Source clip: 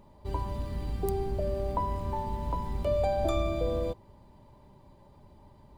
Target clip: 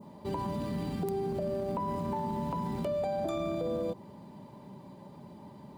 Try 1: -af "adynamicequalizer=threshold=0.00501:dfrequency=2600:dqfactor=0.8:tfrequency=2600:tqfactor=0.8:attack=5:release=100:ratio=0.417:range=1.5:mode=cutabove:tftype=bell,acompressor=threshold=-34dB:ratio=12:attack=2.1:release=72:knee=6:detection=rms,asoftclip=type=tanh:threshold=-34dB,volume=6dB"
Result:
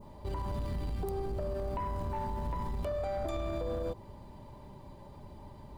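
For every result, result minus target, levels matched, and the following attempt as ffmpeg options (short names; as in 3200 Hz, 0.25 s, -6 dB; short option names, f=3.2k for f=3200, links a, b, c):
soft clip: distortion +19 dB; 250 Hz band -5.0 dB
-af "adynamicequalizer=threshold=0.00501:dfrequency=2600:dqfactor=0.8:tfrequency=2600:tqfactor=0.8:attack=5:release=100:ratio=0.417:range=1.5:mode=cutabove:tftype=bell,acompressor=threshold=-34dB:ratio=12:attack=2.1:release=72:knee=6:detection=rms,asoftclip=type=tanh:threshold=-23dB,volume=6dB"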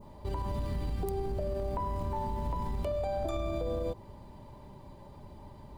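250 Hz band -5.0 dB
-af "adynamicequalizer=threshold=0.00501:dfrequency=2600:dqfactor=0.8:tfrequency=2600:tqfactor=0.8:attack=5:release=100:ratio=0.417:range=1.5:mode=cutabove:tftype=bell,highpass=f=180:t=q:w=2.2,acompressor=threshold=-34dB:ratio=12:attack=2.1:release=72:knee=6:detection=rms,asoftclip=type=tanh:threshold=-23dB,volume=6dB"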